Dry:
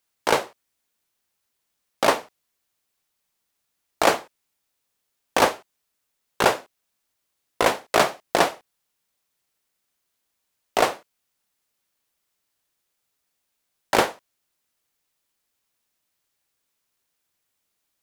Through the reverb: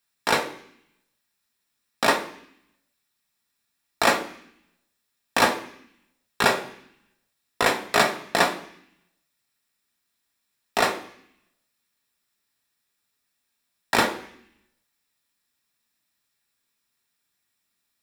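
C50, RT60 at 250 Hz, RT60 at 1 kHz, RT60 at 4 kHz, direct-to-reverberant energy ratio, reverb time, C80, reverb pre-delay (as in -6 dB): 12.5 dB, 0.95 s, 0.70 s, 0.85 s, 5.0 dB, 0.70 s, 15.5 dB, 3 ms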